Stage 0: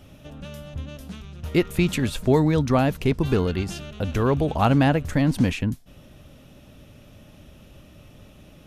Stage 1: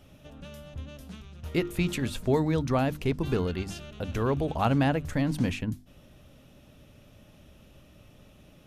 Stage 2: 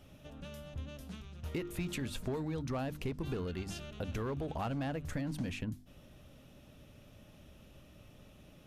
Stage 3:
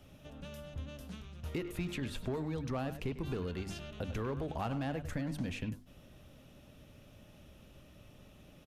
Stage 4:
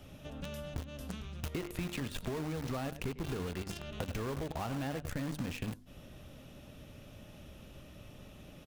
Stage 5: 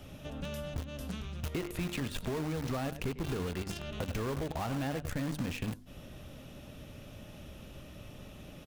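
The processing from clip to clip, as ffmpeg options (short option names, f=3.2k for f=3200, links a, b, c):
-af "bandreject=f=50:t=h:w=6,bandreject=f=100:t=h:w=6,bandreject=f=150:t=h:w=6,bandreject=f=200:t=h:w=6,bandreject=f=250:t=h:w=6,bandreject=f=300:t=h:w=6,bandreject=f=350:t=h:w=6,volume=-5.5dB"
-filter_complex "[0:a]asplit=2[a][b];[b]aeval=exprs='0.0708*(abs(mod(val(0)/0.0708+3,4)-2)-1)':c=same,volume=-7dB[c];[a][c]amix=inputs=2:normalize=0,acompressor=threshold=-28dB:ratio=6,volume=-6dB"
-filter_complex "[0:a]acrossover=split=330|4400[a][b][c];[b]aecho=1:1:99:0.299[d];[c]alimiter=level_in=19.5dB:limit=-24dB:level=0:latency=1:release=325,volume=-19.5dB[e];[a][d][e]amix=inputs=3:normalize=0"
-filter_complex "[0:a]asplit=2[a][b];[b]acrusher=bits=5:mix=0:aa=0.000001,volume=-3dB[c];[a][c]amix=inputs=2:normalize=0,acompressor=threshold=-41dB:ratio=4,volume=5dB"
-af "asoftclip=type=tanh:threshold=-27.5dB,volume=3.5dB"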